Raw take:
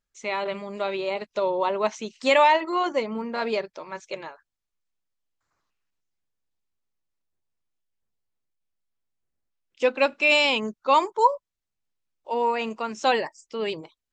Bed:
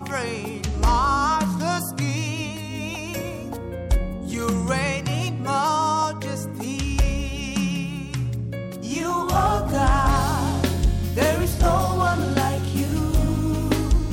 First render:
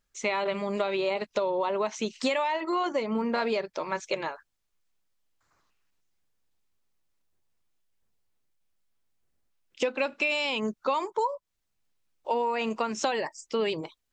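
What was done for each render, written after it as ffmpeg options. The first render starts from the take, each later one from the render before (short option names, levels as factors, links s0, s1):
-filter_complex "[0:a]asplit=2[s0][s1];[s1]alimiter=limit=0.133:level=0:latency=1:release=25,volume=1.06[s2];[s0][s2]amix=inputs=2:normalize=0,acompressor=threshold=0.0631:ratio=12"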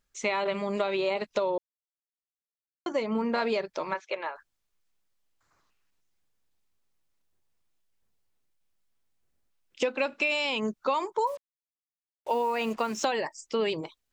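-filter_complex "[0:a]asplit=3[s0][s1][s2];[s0]afade=t=out:st=3.93:d=0.02[s3];[s1]highpass=520,lowpass=2800,afade=t=in:st=3.93:d=0.02,afade=t=out:st=4.34:d=0.02[s4];[s2]afade=t=in:st=4.34:d=0.02[s5];[s3][s4][s5]amix=inputs=3:normalize=0,asettb=1/sr,asplit=3[s6][s7][s8];[s6]atrim=end=11.274[s9];[s7]atrim=start=11.27:end=13.05,asetpts=PTS-STARTPTS,afade=t=in:d=0.004:c=qsin,afade=t=out:st=1.776:d=0.004:c=qsin,acrusher=bits=7:mix=0:aa=0.5[s10];[s8]atrim=start=13.046[s11];[s9][s10]acrossfade=d=0.004:c1=hsin:c2=qsin[s12];[s12][s11]acrossfade=d=0.004:c1=qsin:c2=hsin,asplit=3[s13][s14][s15];[s13]atrim=end=1.58,asetpts=PTS-STARTPTS,afade=t=out:st=1.576:d=0.004:c=hsin[s16];[s14]atrim=start=1.58:end=2.86,asetpts=PTS-STARTPTS,volume=0[s17];[s15]atrim=start=2.86,asetpts=PTS-STARTPTS,afade=t=in:d=0.004:c=hsin[s18];[s16][s17][s18]concat=n=3:v=0:a=1"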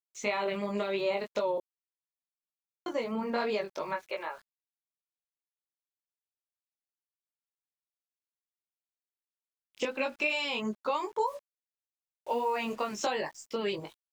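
-af "flanger=delay=19:depth=2:speed=2.8,aeval=exprs='val(0)*gte(abs(val(0)),0.00178)':c=same"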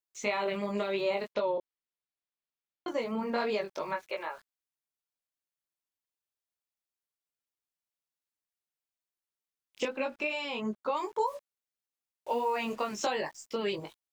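-filter_complex "[0:a]asettb=1/sr,asplit=3[s0][s1][s2];[s0]atrim=end=1.334[s3];[s1]atrim=start=1.33:end=2.88,asetpts=PTS-STARTPTS,afade=t=in:d=0.004:c=qsin,afade=t=out:st=1.546:d=0.004:c=qsin,lowpass=f=4600:w=0.5412,lowpass=f=4600:w=1.3066[s4];[s2]atrim=start=2.876[s5];[s3][s4]acrossfade=d=0.004:c1=hsin:c2=qsin[s6];[s6][s5]acrossfade=d=0.004:c1=qsin:c2=hsin,asettb=1/sr,asplit=3[s7][s8][s9];[s7]atrim=end=9.884[s10];[s8]atrim=start=9.88:end=10.97,asetpts=PTS-STARTPTS,afade=t=in:d=0.004:c=qsin,afade=t=out:st=1.086:d=0.004:c=qsin,highshelf=f=2300:g=-8[s11];[s9]atrim=start=10.966[s12];[s10][s11]acrossfade=d=0.004:c1=hsin:c2=qsin[s13];[s13][s12]acrossfade=d=0.004:c1=qsin:c2=hsin"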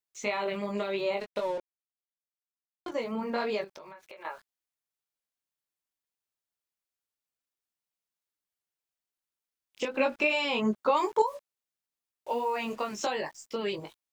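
-filter_complex "[0:a]asettb=1/sr,asplit=3[s0][s1][s2];[s0]atrim=end=1.204[s3];[s1]atrim=start=1.2:end=2.92,asetpts=PTS-STARTPTS,afade=t=in:d=0.004:c=qsin,afade=t=out:st=1.716:d=0.004:c=qsin,aeval=exprs='sgn(val(0))*max(abs(val(0))-0.00562,0)':c=same[s4];[s2]atrim=start=2.916[s5];[s3][s4]acrossfade=d=0.004:c1=hsin:c2=qsin[s6];[s6][s5]acrossfade=d=0.004:c1=qsin:c2=hsin,asettb=1/sr,asplit=3[s7][s8][s9];[s7]atrim=end=3.644[s10];[s8]atrim=start=3.64:end=4.25,asetpts=PTS-STARTPTS,afade=t=in:d=0.004:c=qsin,afade=t=out:st=0.606:d=0.004:c=qsin,acompressor=threshold=0.00708:ratio=16:attack=3.2:release=140:knee=1:detection=peak[s11];[s9]atrim=start=4.246[s12];[s10][s11]acrossfade=d=0.004:c1=hsin:c2=qsin[s13];[s13][s12]acrossfade=d=0.004:c1=qsin:c2=hsin,asettb=1/sr,asplit=3[s14][s15][s16];[s14]atrim=end=9.944[s17];[s15]atrim=start=9.94:end=11.22,asetpts=PTS-STARTPTS,afade=t=in:d=0.004:c=qsin,afade=t=out:st=1.276:d=0.004:c=qsin,acontrast=69[s18];[s16]atrim=start=11.216[s19];[s17][s18]acrossfade=d=0.004:c1=hsin:c2=qsin[s20];[s20][s19]acrossfade=d=0.004:c1=qsin:c2=hsin"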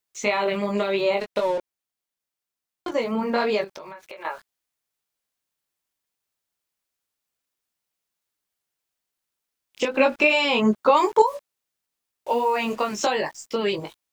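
-af "volume=2.51"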